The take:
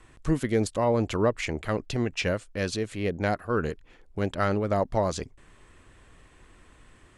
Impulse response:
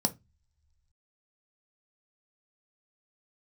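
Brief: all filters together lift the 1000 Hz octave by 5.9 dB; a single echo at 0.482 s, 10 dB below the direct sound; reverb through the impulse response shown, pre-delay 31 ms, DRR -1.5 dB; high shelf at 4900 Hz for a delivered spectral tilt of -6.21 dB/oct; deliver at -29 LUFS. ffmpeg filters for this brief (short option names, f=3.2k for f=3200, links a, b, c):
-filter_complex "[0:a]equalizer=f=1k:t=o:g=7.5,highshelf=f=4.9k:g=7.5,aecho=1:1:482:0.316,asplit=2[a][b];[1:a]atrim=start_sample=2205,adelay=31[c];[b][c]afir=irnorm=-1:irlink=0,volume=-4.5dB[d];[a][d]amix=inputs=2:normalize=0,volume=-11dB"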